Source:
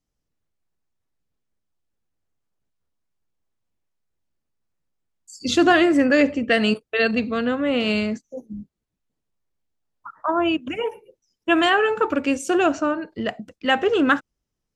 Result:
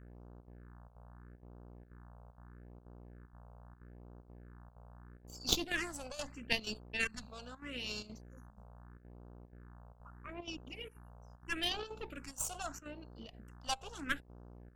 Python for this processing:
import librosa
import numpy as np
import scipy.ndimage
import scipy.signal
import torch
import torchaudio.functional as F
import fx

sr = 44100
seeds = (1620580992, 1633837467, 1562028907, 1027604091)

y = scipy.signal.lfilter([1.0, -0.9], [1.0], x)
y = fx.dmg_buzz(y, sr, base_hz=60.0, harmonics=29, level_db=-49.0, tilt_db=-5, odd_only=False)
y = fx.cheby_harmonics(y, sr, harmonics=(4, 7), levels_db=(-11, -19), full_scale_db=-5.0)
y = fx.chopper(y, sr, hz=2.1, depth_pct=65, duty_pct=85)
y = fx.phaser_stages(y, sr, stages=4, low_hz=310.0, high_hz=2000.0, hz=0.78, feedback_pct=5)
y = F.gain(torch.from_numpy(y), 9.0).numpy()